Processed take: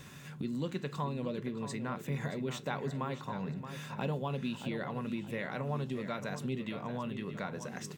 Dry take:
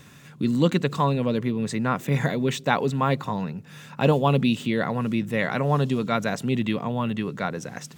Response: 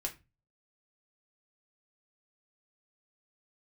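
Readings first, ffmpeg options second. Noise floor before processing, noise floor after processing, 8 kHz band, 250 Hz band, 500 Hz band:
−47 dBFS, −49 dBFS, −10.0 dB, −13.0 dB, −13.0 dB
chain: -filter_complex "[0:a]acompressor=threshold=-38dB:ratio=2.5,asplit=2[link_01][link_02];[link_02]adelay=625,lowpass=frequency=4200:poles=1,volume=-9.5dB,asplit=2[link_03][link_04];[link_04]adelay=625,lowpass=frequency=4200:poles=1,volume=0.36,asplit=2[link_05][link_06];[link_06]adelay=625,lowpass=frequency=4200:poles=1,volume=0.36,asplit=2[link_07][link_08];[link_08]adelay=625,lowpass=frequency=4200:poles=1,volume=0.36[link_09];[link_01][link_03][link_05][link_07][link_09]amix=inputs=5:normalize=0,asplit=2[link_10][link_11];[1:a]atrim=start_sample=2205[link_12];[link_11][link_12]afir=irnorm=-1:irlink=0,volume=-5dB[link_13];[link_10][link_13]amix=inputs=2:normalize=0,volume=-5dB"

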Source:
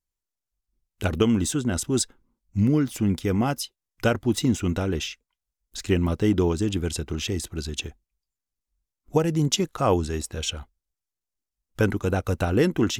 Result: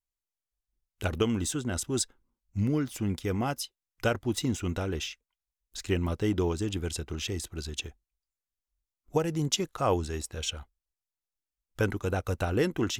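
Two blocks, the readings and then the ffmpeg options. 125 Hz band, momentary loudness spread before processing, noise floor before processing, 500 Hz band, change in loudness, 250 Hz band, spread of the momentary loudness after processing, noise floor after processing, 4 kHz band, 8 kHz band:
−6.0 dB, 10 LU, below −85 dBFS, −5.5 dB, −6.0 dB, −7.5 dB, 9 LU, below −85 dBFS, −4.0 dB, −4.0 dB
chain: -filter_complex "[0:a]equalizer=frequency=210:width_type=o:width=1.4:gain=-4.5,asplit=2[link_01][link_02];[link_02]aeval=exprs='sgn(val(0))*max(abs(val(0))-0.00708,0)':channel_layout=same,volume=-11dB[link_03];[link_01][link_03]amix=inputs=2:normalize=0,volume=-6dB"

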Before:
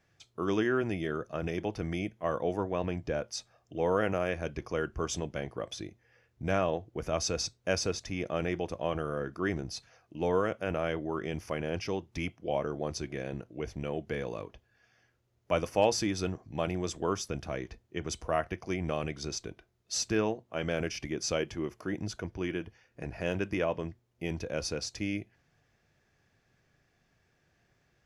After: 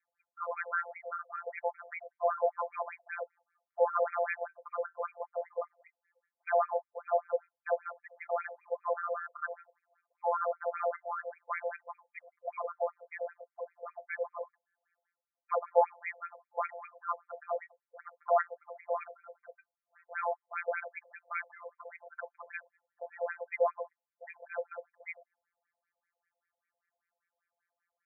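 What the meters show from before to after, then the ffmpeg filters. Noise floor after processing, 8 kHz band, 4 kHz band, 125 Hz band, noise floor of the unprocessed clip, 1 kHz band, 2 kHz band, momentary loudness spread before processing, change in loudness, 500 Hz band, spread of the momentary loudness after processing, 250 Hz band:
below −85 dBFS, below −40 dB, below −40 dB, below −40 dB, −73 dBFS, +3.0 dB, −2.0 dB, 10 LU, −2.5 dB, −2.5 dB, 17 LU, below −40 dB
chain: -af "afftdn=noise_reduction=14:noise_floor=-50,afftfilt=real='hypot(re,im)*cos(PI*b)':imag='0':win_size=1024:overlap=0.75,afftfilt=real='re*between(b*sr/1024,650*pow(1800/650,0.5+0.5*sin(2*PI*5.1*pts/sr))/1.41,650*pow(1800/650,0.5+0.5*sin(2*PI*5.1*pts/sr))*1.41)':imag='im*between(b*sr/1024,650*pow(1800/650,0.5+0.5*sin(2*PI*5.1*pts/sr))/1.41,650*pow(1800/650,0.5+0.5*sin(2*PI*5.1*pts/sr))*1.41)':win_size=1024:overlap=0.75,volume=9dB"

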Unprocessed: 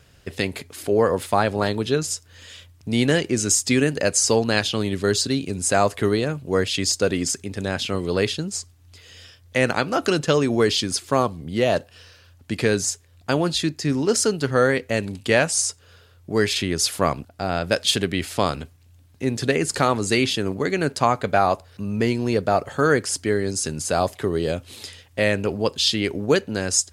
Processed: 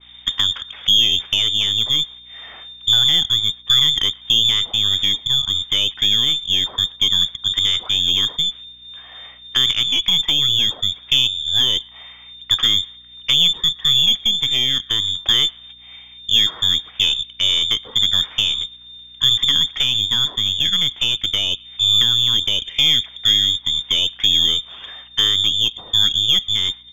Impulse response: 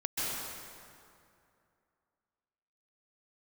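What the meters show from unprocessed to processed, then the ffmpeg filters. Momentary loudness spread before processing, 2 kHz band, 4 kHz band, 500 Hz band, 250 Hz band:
8 LU, −3.0 dB, +16.0 dB, −21.5 dB, −14.0 dB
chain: -filter_complex "[0:a]acrossover=split=420[link_01][link_02];[link_01]alimiter=limit=-19.5dB:level=0:latency=1:release=28[link_03];[link_02]acompressor=threshold=-32dB:ratio=6[link_04];[link_03][link_04]amix=inputs=2:normalize=0,lowpass=frequency=3100:width_type=q:width=0.5098,lowpass=frequency=3100:width_type=q:width=0.6013,lowpass=frequency=3100:width_type=q:width=0.9,lowpass=frequency=3100:width_type=q:width=2.563,afreqshift=-3700,aeval=exprs='val(0)+0.00178*(sin(2*PI*60*n/s)+sin(2*PI*2*60*n/s)/2+sin(2*PI*3*60*n/s)/3+sin(2*PI*4*60*n/s)/4+sin(2*PI*5*60*n/s)/5)':channel_layout=same,crystalizer=i=8.5:c=0,asplit=2[link_05][link_06];[link_06]adelay=121,lowpass=frequency=1500:poles=1,volume=-20dB,asplit=2[link_07][link_08];[link_08]adelay=121,lowpass=frequency=1500:poles=1,volume=0.46,asplit=2[link_09][link_10];[link_10]adelay=121,lowpass=frequency=1500:poles=1,volume=0.46[link_11];[link_07][link_09][link_11]amix=inputs=3:normalize=0[link_12];[link_05][link_12]amix=inputs=2:normalize=0,aeval=exprs='0.841*(cos(1*acos(clip(val(0)/0.841,-1,1)))-cos(1*PI/2))+0.0668*(cos(2*acos(clip(val(0)/0.841,-1,1)))-cos(2*PI/2))+0.0299*(cos(6*acos(clip(val(0)/0.841,-1,1)))-cos(6*PI/2))':channel_layout=same,adynamicequalizer=threshold=0.0562:dfrequency=1700:dqfactor=0.7:tfrequency=1700:tqfactor=0.7:attack=5:release=100:ratio=0.375:range=2.5:mode=cutabove:tftype=highshelf,volume=-1dB"

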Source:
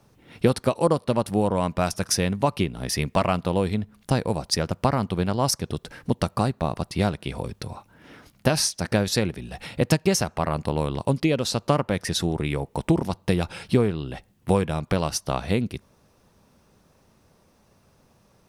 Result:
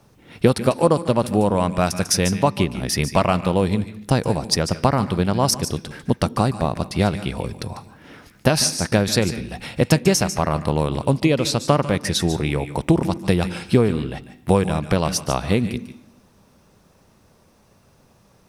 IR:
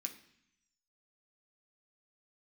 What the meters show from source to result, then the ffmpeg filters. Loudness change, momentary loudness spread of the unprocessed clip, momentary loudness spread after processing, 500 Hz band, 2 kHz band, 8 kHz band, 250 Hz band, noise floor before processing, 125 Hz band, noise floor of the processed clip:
+4.5 dB, 9 LU, 8 LU, +4.0 dB, +4.5 dB, +4.5 dB, +4.5 dB, −61 dBFS, +4.5 dB, −56 dBFS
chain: -filter_complex "[0:a]asplit=2[link_01][link_02];[1:a]atrim=start_sample=2205,adelay=146[link_03];[link_02][link_03]afir=irnorm=-1:irlink=0,volume=-8.5dB[link_04];[link_01][link_04]amix=inputs=2:normalize=0,volume=4dB"

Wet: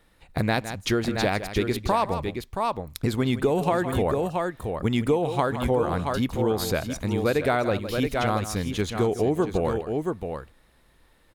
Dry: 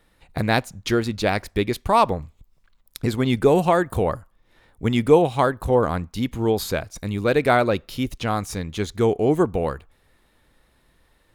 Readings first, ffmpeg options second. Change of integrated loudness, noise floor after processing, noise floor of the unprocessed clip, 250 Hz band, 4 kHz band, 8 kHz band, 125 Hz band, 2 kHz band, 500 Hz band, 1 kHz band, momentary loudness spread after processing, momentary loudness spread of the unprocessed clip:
−4.0 dB, −60 dBFS, −63 dBFS, −2.5 dB, −1.5 dB, −0.5 dB, −2.0 dB, −3.0 dB, −3.5 dB, −4.0 dB, 6 LU, 11 LU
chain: -af "aecho=1:1:160|674:0.188|0.376,acompressor=threshold=-19dB:ratio=6"

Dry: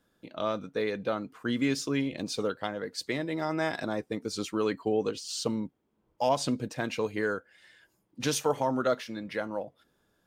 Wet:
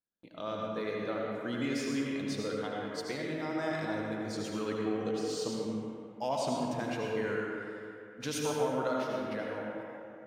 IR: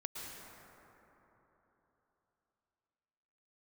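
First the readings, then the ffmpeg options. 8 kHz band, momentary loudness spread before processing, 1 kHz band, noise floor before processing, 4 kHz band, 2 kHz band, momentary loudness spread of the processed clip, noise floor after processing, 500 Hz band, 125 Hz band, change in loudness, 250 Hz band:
−5.5 dB, 7 LU, −3.5 dB, −74 dBFS, −5.0 dB, −3.0 dB, 8 LU, −50 dBFS, −3.0 dB, −3.0 dB, −3.5 dB, −2.5 dB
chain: -filter_complex "[0:a]agate=range=-21dB:threshold=-60dB:ratio=16:detection=peak[link_01];[1:a]atrim=start_sample=2205,asetrate=66150,aresample=44100[link_02];[link_01][link_02]afir=irnorm=-1:irlink=0"

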